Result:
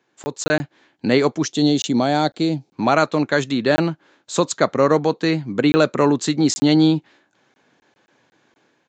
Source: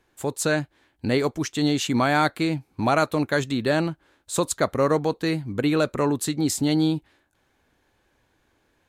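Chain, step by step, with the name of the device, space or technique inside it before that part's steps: call with lost packets (HPF 140 Hz 24 dB/oct; downsampling 16000 Hz; AGC gain up to 7.5 dB; packet loss packets of 20 ms random); 1.45–2.73 band shelf 1600 Hz -10 dB

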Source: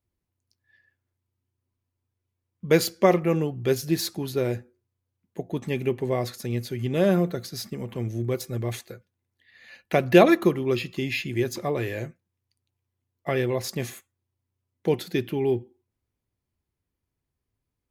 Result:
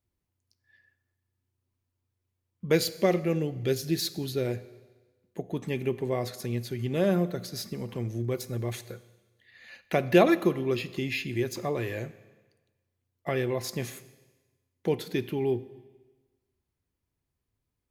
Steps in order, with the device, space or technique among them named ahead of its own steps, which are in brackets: 2.75–4.47 fifteen-band EQ 100 Hz +3 dB, 1000 Hz -9 dB, 4000 Hz +4 dB; Schroeder reverb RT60 1.2 s, combs from 30 ms, DRR 16.5 dB; parallel compression (in parallel at -3.5 dB: compressor, threshold -34 dBFS, peak gain reduction 22 dB); on the sum: gain -5 dB

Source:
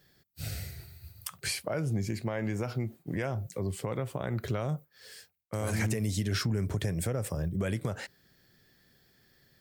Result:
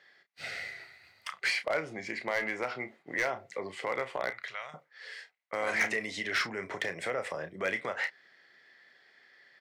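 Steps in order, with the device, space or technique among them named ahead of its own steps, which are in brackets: 4.3–4.74 passive tone stack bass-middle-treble 10-0-10; megaphone (BPF 640–3200 Hz; bell 2000 Hz +10.5 dB 0.25 oct; hard clip -29 dBFS, distortion -16 dB; doubler 32 ms -10 dB); gain +6.5 dB

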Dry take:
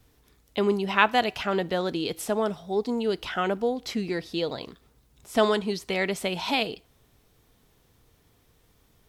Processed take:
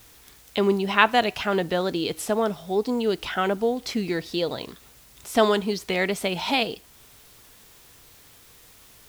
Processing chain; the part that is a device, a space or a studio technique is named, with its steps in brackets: noise-reduction cassette on a plain deck (mismatched tape noise reduction encoder only; wow and flutter; white noise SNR 28 dB); gain +2.5 dB

